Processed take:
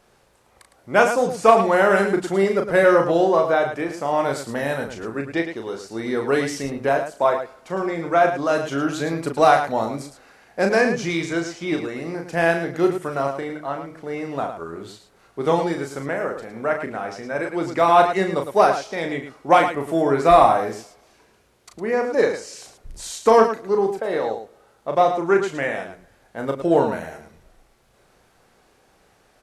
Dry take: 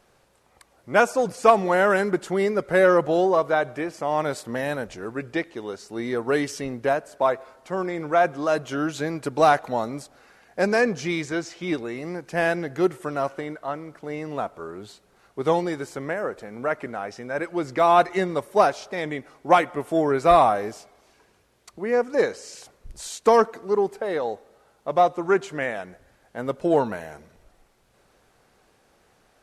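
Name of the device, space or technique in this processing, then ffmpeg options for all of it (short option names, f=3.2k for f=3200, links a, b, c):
slapback doubling: -filter_complex "[0:a]asplit=3[a][b][c];[b]adelay=36,volume=-5.5dB[d];[c]adelay=109,volume=-8.5dB[e];[a][d][e]amix=inputs=3:normalize=0,volume=1.5dB"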